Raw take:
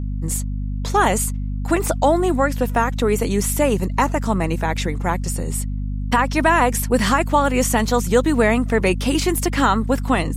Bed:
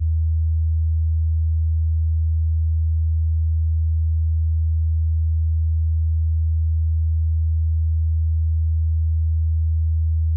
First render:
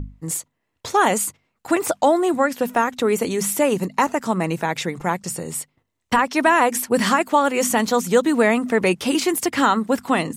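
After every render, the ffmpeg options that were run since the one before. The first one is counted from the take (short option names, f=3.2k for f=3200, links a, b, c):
-af "bandreject=f=50:t=h:w=6,bandreject=f=100:t=h:w=6,bandreject=f=150:t=h:w=6,bandreject=f=200:t=h:w=6,bandreject=f=250:t=h:w=6"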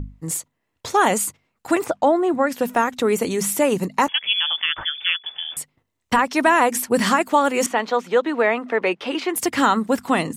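-filter_complex "[0:a]asettb=1/sr,asplit=3[a][b][c];[a]atrim=end=1.844[d];[b]atrim=start=1.84:end=2.47,asetpts=PTS-STARTPTS,afade=t=in:d=0.004:c=qsin,afade=t=out:st=0.626:d=0.004:c=qsin,lowpass=f=1.7k:p=1[e];[c]atrim=start=2.466[f];[d][e]acrossfade=d=0.004:c1=hsin:c2=qsin[g];[g][f]acrossfade=d=0.004:c1=qsin:c2=hsin,asettb=1/sr,asplit=3[h][i][j];[h]atrim=end=4.084[k];[i]atrim=start=4.08:end=5.57,asetpts=PTS-STARTPTS,afade=t=in:d=0.004:c=qsin,afade=t=out:st=1.486:d=0.004:c=qsin,lowpass=f=3.1k:t=q:w=0.5098,lowpass=f=3.1k:t=q:w=0.6013,lowpass=f=3.1k:t=q:w=0.9,lowpass=f=3.1k:t=q:w=2.563,afreqshift=-3600[l];[j]atrim=start=5.566[m];[k][l]acrossfade=d=0.004:c1=hsin:c2=qsin[n];[n][m]acrossfade=d=0.004:c1=qsin:c2=hsin,asettb=1/sr,asplit=3[o][p][q];[o]atrim=end=7.664[r];[p]atrim=start=7.66:end=9.36,asetpts=PTS-STARTPTS,afade=t=in:d=0.004:c=qsin,afade=t=out:st=1.696:d=0.004:c=qsin,acrossover=split=320 3900:gain=0.126 1 0.0631[s][t][u];[s][t][u]amix=inputs=3:normalize=0[v];[q]atrim=start=9.356[w];[r][v]acrossfade=d=0.004:c1=hsin:c2=qsin[x];[x][w]acrossfade=d=0.004:c1=qsin:c2=hsin"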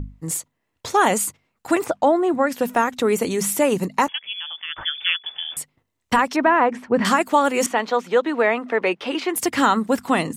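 -filter_complex "[0:a]asettb=1/sr,asplit=3[a][b][c];[a]atrim=end=6.364[d];[b]atrim=start=6.36:end=7.05,asetpts=PTS-STARTPTS,afade=t=in:d=0.004:c=qsin,afade=t=out:st=0.686:d=0.004:c=qsin,lowpass=1.9k[e];[c]atrim=start=7.046[f];[d][e]acrossfade=d=0.004:c1=hsin:c2=qsin[g];[g][f]acrossfade=d=0.004:c1=qsin:c2=hsin,asplit=3[h][i][j];[h]atrim=end=4.21,asetpts=PTS-STARTPTS,afade=t=out:st=4:d=0.21:silence=0.316228[k];[i]atrim=start=4.21:end=4.67,asetpts=PTS-STARTPTS,volume=-10dB[l];[j]atrim=start=4.67,asetpts=PTS-STARTPTS,afade=t=in:d=0.21:silence=0.316228[m];[k][l][m]concat=n=3:v=0:a=1"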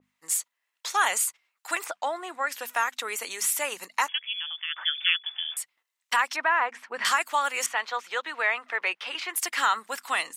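-af "highpass=1.4k,adynamicequalizer=threshold=0.0178:dfrequency=2400:dqfactor=0.7:tfrequency=2400:tqfactor=0.7:attack=5:release=100:ratio=0.375:range=2:mode=cutabove:tftype=highshelf"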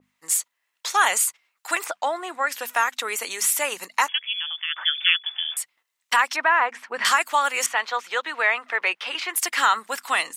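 -af "volume=4.5dB"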